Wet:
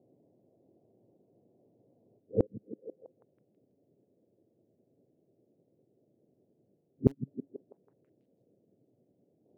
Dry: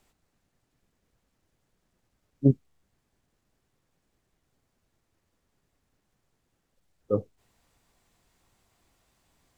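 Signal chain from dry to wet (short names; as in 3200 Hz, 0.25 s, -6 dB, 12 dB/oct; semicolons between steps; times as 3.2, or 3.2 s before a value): whole clip reversed; elliptic band-pass 110–620 Hz, stop band 40 dB; bell 390 Hz +10.5 dB 1.5 oct; in parallel at -9 dB: wrapped overs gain 5 dB; on the sum: flipped gate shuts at -9 dBFS, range -36 dB; on a send: delay with a stepping band-pass 0.163 s, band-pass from 170 Hz, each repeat 0.7 oct, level -10 dB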